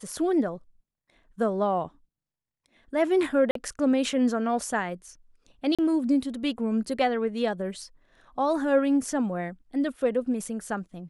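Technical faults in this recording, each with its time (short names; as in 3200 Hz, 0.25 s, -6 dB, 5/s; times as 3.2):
3.51–3.55 gap 43 ms
5.75–5.79 gap 36 ms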